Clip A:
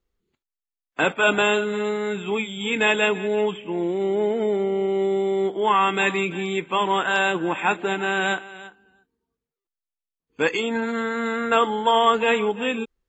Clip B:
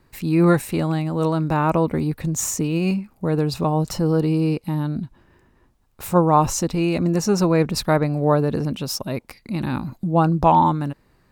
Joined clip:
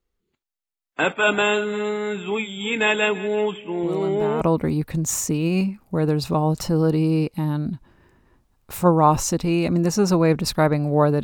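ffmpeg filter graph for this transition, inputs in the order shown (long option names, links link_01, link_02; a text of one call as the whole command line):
ffmpeg -i cue0.wav -i cue1.wav -filter_complex "[1:a]asplit=2[link_01][link_02];[0:a]apad=whole_dur=11.23,atrim=end=11.23,atrim=end=4.412[link_03];[link_02]atrim=start=1.708:end=8.53[link_04];[link_01]atrim=start=1.13:end=1.71,asetpts=PTS-STARTPTS,volume=-9.5dB,afade=type=in:duration=0.004:curve=hsin,afade=type=out:start_time=0.576:duration=0.004:curve=hsin,adelay=3830[link_05];[link_03][link_04]acrossfade=duration=0.004:curve1=hsin:curve2=hsin[link_06];[link_06][link_05]amix=inputs=2:normalize=0" out.wav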